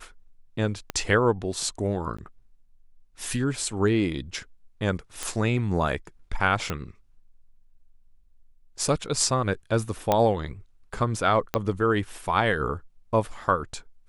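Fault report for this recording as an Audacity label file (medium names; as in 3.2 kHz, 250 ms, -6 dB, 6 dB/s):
0.900000	0.900000	pop -14 dBFS
2.170000	2.190000	dropout 15 ms
5.230000	5.230000	pop -15 dBFS
6.700000	6.700000	pop -14 dBFS
10.120000	10.120000	pop -8 dBFS
11.540000	11.540000	pop -10 dBFS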